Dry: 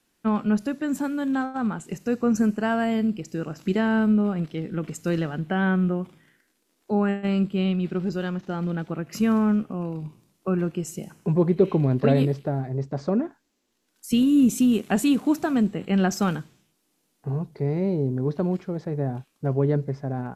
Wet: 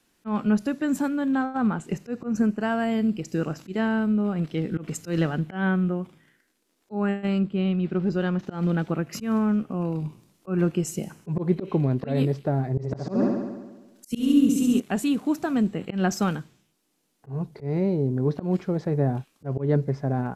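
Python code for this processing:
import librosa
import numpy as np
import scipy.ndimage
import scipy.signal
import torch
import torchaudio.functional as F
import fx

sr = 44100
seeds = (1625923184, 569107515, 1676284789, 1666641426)

y = fx.high_shelf(x, sr, hz=4700.0, db=-8.5, at=(1.08, 2.61))
y = fx.lowpass(y, sr, hz=2700.0, slope=6, at=(7.38, 8.39))
y = fx.room_flutter(y, sr, wall_m=11.8, rt60_s=1.2, at=(12.7, 14.8))
y = fx.high_shelf(y, sr, hz=11000.0, db=-2.5)
y = fx.auto_swell(y, sr, attack_ms=154.0)
y = fx.rider(y, sr, range_db=4, speed_s=0.5)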